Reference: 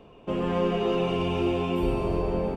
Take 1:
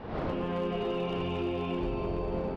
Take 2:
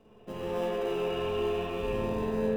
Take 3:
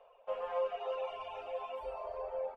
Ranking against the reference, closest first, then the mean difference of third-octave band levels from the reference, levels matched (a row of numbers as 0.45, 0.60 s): 1, 2, 3; 3.5, 4.5, 11.5 dB